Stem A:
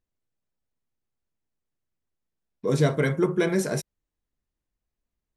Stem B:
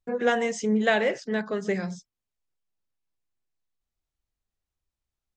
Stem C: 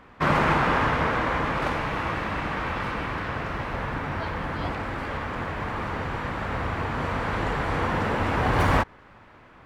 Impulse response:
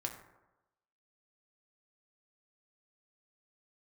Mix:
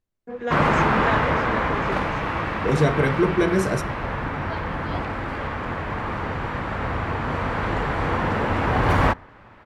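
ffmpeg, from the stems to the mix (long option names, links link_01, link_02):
-filter_complex "[0:a]volume=-1.5dB,asplit=2[link_01][link_02];[link_02]volume=-3dB[link_03];[1:a]adelay=200,volume=-5dB[link_04];[2:a]adelay=300,volume=2dB,asplit=2[link_05][link_06];[link_06]volume=-20dB[link_07];[3:a]atrim=start_sample=2205[link_08];[link_03][link_07]amix=inputs=2:normalize=0[link_09];[link_09][link_08]afir=irnorm=-1:irlink=0[link_10];[link_01][link_04][link_05][link_10]amix=inputs=4:normalize=0,highshelf=frequency=4700:gain=-6.5"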